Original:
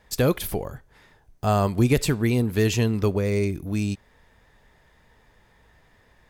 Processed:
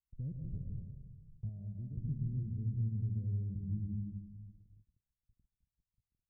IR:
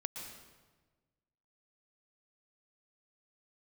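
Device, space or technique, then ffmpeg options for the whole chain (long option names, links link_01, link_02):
club heard from the street: -filter_complex "[0:a]alimiter=limit=-18.5dB:level=0:latency=1:release=250,lowpass=frequency=160:width=0.5412,lowpass=frequency=160:width=1.3066[link_01];[1:a]atrim=start_sample=2205[link_02];[link_01][link_02]afir=irnorm=-1:irlink=0,equalizer=frequency=600:width_type=o:width=0.83:gain=15,agate=range=-32dB:threshold=-54dB:ratio=16:detection=peak,asettb=1/sr,asplit=3[link_03][link_04][link_05];[link_03]atrim=end=1.494[link_06];[link_04]atrim=start=1.49:end=1.97,asetpts=PTS-STARTPTS,afade=type=in:duration=0.004:curve=qsin,afade=type=out:start_time=0.476:duration=0.004:curve=qsin,tiltshelf=frequency=660:gain=-7[link_07];[link_05]atrim=start=1.966[link_08];[link_06][link_07]acrossfade=duration=0.004:curve1=hsin:curve2=qsin[link_09];[link_09][link_08]acrossfade=duration=0.004:curve1=qsin:curve2=hsin,volume=-4dB"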